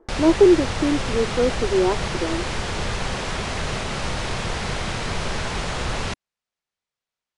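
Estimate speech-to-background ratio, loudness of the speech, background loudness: 6.5 dB, −20.5 LKFS, −27.0 LKFS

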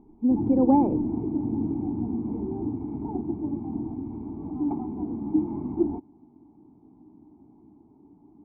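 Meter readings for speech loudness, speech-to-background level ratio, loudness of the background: −22.5 LKFS, 7.5 dB, −30.0 LKFS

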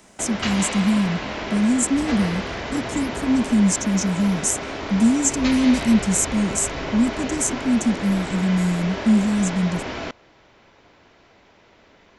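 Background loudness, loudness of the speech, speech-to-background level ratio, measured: −28.5 LKFS, −21.0 LKFS, 7.5 dB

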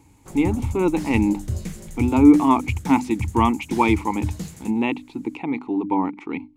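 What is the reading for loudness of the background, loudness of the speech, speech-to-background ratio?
−31.0 LKFS, −21.0 LKFS, 10.0 dB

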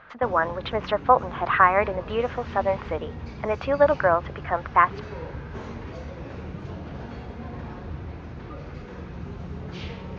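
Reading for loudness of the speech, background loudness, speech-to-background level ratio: −23.5 LKFS, −37.5 LKFS, 14.0 dB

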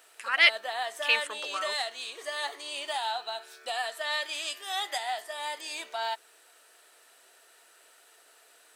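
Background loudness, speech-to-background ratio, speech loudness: −33.5 LKFS, 7.5 dB, −26.0 LKFS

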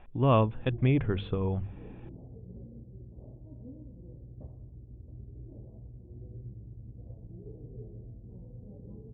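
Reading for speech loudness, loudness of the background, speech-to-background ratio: −28.0 LKFS, −47.5 LKFS, 19.5 dB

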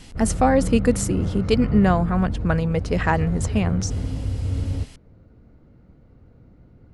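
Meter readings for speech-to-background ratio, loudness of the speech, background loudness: 6.0 dB, −21.5 LKFS, −27.5 LKFS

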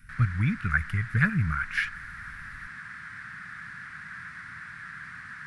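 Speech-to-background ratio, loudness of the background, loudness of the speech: 13.0 dB, −40.5 LKFS, −27.5 LKFS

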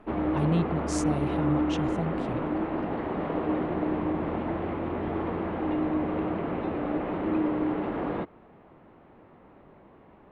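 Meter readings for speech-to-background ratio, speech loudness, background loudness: −2.5 dB, −32.0 LKFS, −29.5 LKFS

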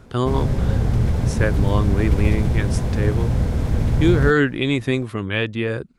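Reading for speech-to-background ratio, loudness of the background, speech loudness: −1.0 dB, −21.5 LKFS, −22.5 LKFS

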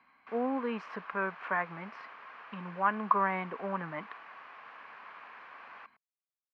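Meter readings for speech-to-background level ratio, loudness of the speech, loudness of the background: 16.0 dB, −33.5 LKFS, −49.5 LKFS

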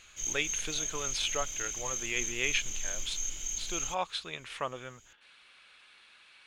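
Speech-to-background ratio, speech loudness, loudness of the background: −1.0 dB, −35.5 LKFS, −34.5 LKFS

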